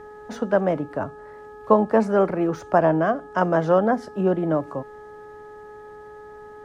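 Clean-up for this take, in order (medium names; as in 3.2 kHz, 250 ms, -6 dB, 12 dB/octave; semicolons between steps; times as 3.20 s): de-hum 421.9 Hz, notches 4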